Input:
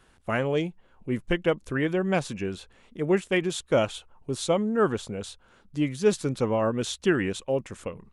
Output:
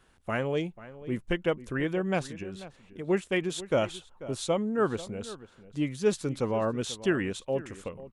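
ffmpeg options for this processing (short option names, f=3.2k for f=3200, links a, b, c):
-filter_complex "[0:a]asplit=3[a][b][c];[a]afade=t=out:st=2.26:d=0.02[d];[b]acompressor=threshold=-32dB:ratio=6,afade=t=in:st=2.26:d=0.02,afade=t=out:st=3.07:d=0.02[e];[c]afade=t=in:st=3.07:d=0.02[f];[d][e][f]amix=inputs=3:normalize=0,asplit=2[g][h];[h]adelay=489.8,volume=-16dB,highshelf=f=4k:g=-11[i];[g][i]amix=inputs=2:normalize=0,volume=-3.5dB"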